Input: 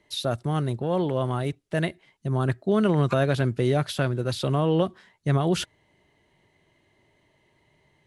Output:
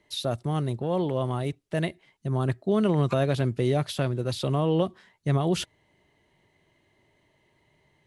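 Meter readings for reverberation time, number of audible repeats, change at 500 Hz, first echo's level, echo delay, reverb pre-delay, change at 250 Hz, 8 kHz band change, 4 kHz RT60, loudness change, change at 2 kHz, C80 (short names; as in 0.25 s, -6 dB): none, none, -1.5 dB, none, none, none, -1.5 dB, -1.5 dB, none, -1.5 dB, -5.0 dB, none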